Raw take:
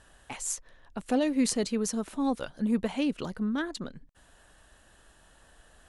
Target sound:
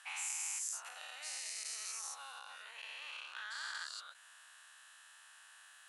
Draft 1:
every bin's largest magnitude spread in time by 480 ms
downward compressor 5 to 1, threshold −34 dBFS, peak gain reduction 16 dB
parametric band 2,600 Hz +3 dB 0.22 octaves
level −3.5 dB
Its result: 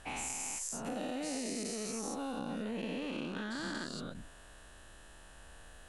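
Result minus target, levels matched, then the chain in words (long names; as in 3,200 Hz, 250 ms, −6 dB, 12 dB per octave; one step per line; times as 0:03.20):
1,000 Hz band +3.5 dB
every bin's largest magnitude spread in time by 480 ms
downward compressor 5 to 1, threshold −34 dBFS, peak gain reduction 16 dB
high-pass filter 1,100 Hz 24 dB per octave
parametric band 2,600 Hz +3 dB 0.22 octaves
level −3.5 dB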